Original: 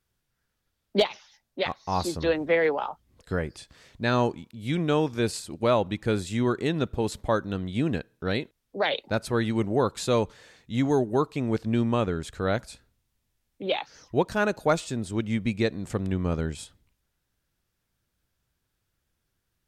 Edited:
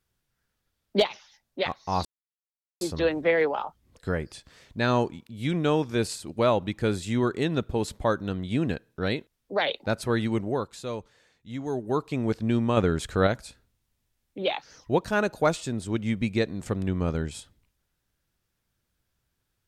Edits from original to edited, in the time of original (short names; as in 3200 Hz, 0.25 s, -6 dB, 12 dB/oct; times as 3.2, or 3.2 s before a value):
2.05 insert silence 0.76 s
9.51–11.36 dip -10 dB, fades 0.49 s
12.01–12.51 gain +5 dB